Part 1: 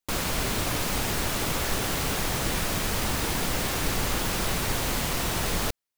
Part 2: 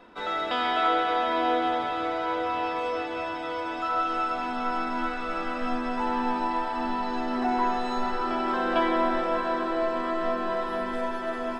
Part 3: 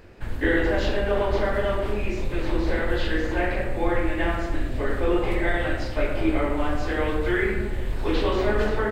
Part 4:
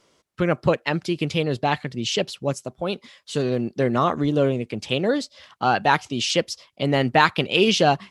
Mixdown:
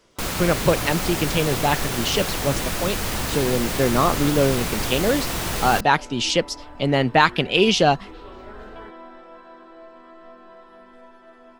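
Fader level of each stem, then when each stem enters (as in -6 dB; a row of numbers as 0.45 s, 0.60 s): +1.5 dB, -17.5 dB, -19.0 dB, +1.0 dB; 0.10 s, 0.00 s, 0.00 s, 0.00 s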